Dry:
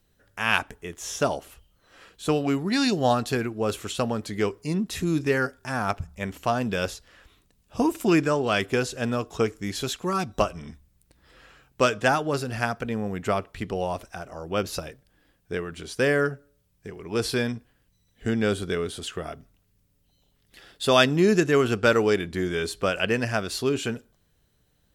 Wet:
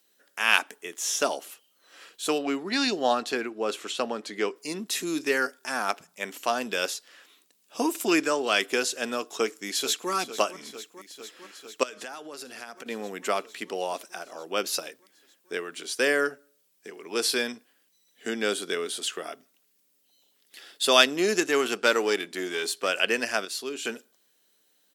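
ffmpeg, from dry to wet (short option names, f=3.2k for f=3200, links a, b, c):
-filter_complex "[0:a]asettb=1/sr,asplit=3[a][b][c];[a]atrim=end=2.384[d];[b]atrim=start=2.38:end=4.56,asetpts=PTS-STARTPTS,afade=t=in:d=0.004:c=qsin,afade=t=out:st=2.176:d=0.004:c=qsin,aemphasis=mode=reproduction:type=50fm[e];[c]atrim=start=4.556[f];[d][e]acrossfade=d=0.004:c1=hsin:c2=qsin[g];[g][f]acrossfade=d=0.004:c1=qsin:c2=hsin,asplit=2[h][i];[i]afade=t=in:st=9.38:d=0.01,afade=t=out:st=10.11:d=0.01,aecho=0:1:450|900|1350|1800|2250|2700|3150|3600|4050|4500|4950|5400:0.199526|0.159621|0.127697|0.102157|0.0817259|0.0653808|0.0523046|0.0418437|0.0334749|0.02678|0.021424|0.0171392[j];[h][j]amix=inputs=2:normalize=0,asettb=1/sr,asplit=3[k][l][m];[k]atrim=end=11.834[n];[l]atrim=start=11.83:end=12.86,asetpts=PTS-STARTPTS,afade=t=in:d=0.004:c=qsin,afade=t=out:st=1.026:d=0.004:c=qsin,acompressor=threshold=-34dB:ratio=12:attack=3.2:release=140:knee=1:detection=peak[o];[m]atrim=start=12.856[p];[n][o]acrossfade=d=0.004:c1=hsin:c2=qsin[q];[q][p]acrossfade=d=0.004:c1=qsin:c2=hsin,asettb=1/sr,asplit=3[r][s][t];[r]atrim=end=21.014[u];[s]atrim=start=21.01:end=22.89,asetpts=PTS-STARTPTS,afade=t=in:d=0.004:c=qsin,afade=t=out:st=1.876:d=0.004:c=qsin,aeval=exprs='if(lt(val(0),0),0.708*val(0),val(0))':c=same[v];[t]atrim=start=22.886[w];[u][v]acrossfade=d=0.004:c1=hsin:c2=qsin[x];[x][w]acrossfade=d=0.004:c1=qsin:c2=hsin,asplit=3[y][z][aa];[y]atrim=end=23.452[ab];[z]atrim=start=23.448:end=23.852,asetpts=PTS-STARTPTS,volume=-7dB[ac];[aa]atrim=start=23.848[ad];[ab][ac]acrossfade=d=0.004:c1=hsin:c2=hsin[ae];[ae][ad]acrossfade=d=0.004:c1=hsin:c2=hsin,highpass=f=260:w=0.5412,highpass=f=260:w=1.3066,highshelf=f=2.1k:g=10,volume=-3dB"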